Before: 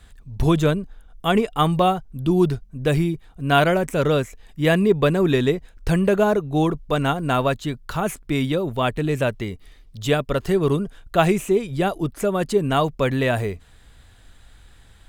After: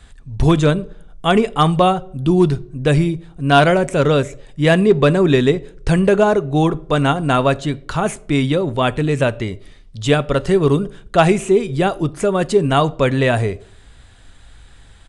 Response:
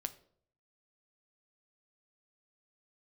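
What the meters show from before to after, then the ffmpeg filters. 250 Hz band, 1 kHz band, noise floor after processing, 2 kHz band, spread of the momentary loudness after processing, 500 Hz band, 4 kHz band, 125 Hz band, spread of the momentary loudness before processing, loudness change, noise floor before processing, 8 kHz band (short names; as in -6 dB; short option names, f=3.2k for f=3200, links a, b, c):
+4.5 dB, +4.5 dB, -44 dBFS, +4.5 dB, 9 LU, +5.0 dB, +4.5 dB, +5.0 dB, 9 LU, +5.0 dB, -50 dBFS, +4.5 dB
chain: -filter_complex "[0:a]asoftclip=type=hard:threshold=-8dB,asplit=2[a][b];[1:a]atrim=start_sample=2205[c];[b][c]afir=irnorm=-1:irlink=0,volume=1dB[d];[a][d]amix=inputs=2:normalize=0,aresample=22050,aresample=44100,volume=-1dB"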